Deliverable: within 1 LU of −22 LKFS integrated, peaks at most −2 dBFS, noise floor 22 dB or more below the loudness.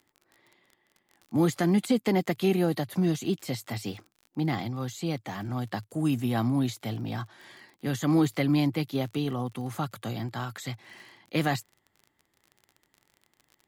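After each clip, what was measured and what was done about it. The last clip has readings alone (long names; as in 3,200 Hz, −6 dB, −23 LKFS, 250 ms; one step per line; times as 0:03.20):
crackle rate 36 per second; integrated loudness −29.0 LKFS; sample peak −14.0 dBFS; target loudness −22.0 LKFS
→ click removal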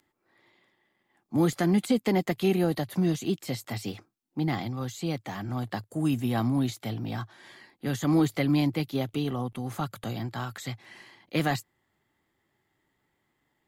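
crackle rate 0.073 per second; integrated loudness −29.0 LKFS; sample peak −14.0 dBFS; target loudness −22.0 LKFS
→ level +7 dB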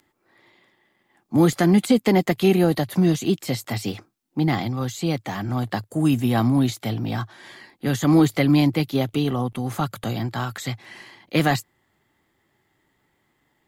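integrated loudness −22.0 LKFS; sample peak −7.0 dBFS; background noise floor −69 dBFS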